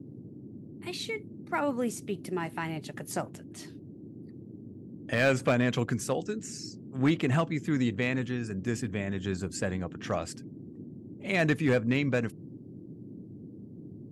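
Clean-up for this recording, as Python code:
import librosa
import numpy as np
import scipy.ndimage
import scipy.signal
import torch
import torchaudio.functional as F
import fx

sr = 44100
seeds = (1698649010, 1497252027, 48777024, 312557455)

y = fx.fix_declip(x, sr, threshold_db=-17.0)
y = fx.noise_reduce(y, sr, print_start_s=3.66, print_end_s=4.16, reduce_db=28.0)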